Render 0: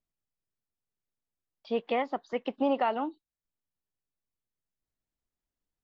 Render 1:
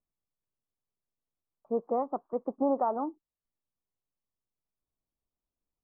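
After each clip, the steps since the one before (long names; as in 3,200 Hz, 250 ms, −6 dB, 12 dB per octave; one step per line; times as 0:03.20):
elliptic low-pass filter 1,200 Hz, stop band 60 dB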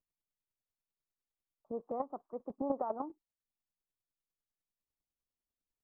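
square-wave tremolo 10 Hz, depth 60%, duty 15%
level −2 dB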